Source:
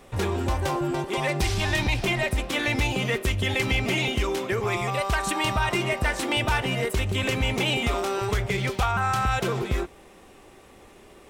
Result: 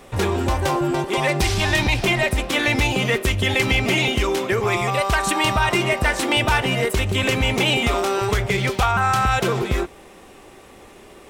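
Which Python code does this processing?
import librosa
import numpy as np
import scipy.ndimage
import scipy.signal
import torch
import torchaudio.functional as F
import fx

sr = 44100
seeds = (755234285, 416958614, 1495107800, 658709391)

y = fx.low_shelf(x, sr, hz=140.0, db=-3.0)
y = y * librosa.db_to_amplitude(6.0)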